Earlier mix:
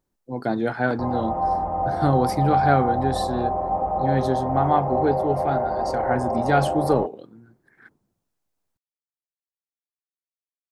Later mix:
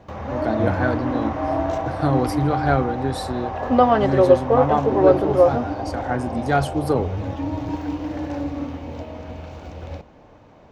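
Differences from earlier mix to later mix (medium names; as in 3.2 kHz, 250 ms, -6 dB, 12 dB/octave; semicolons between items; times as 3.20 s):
first sound: unmuted; second sound -7.0 dB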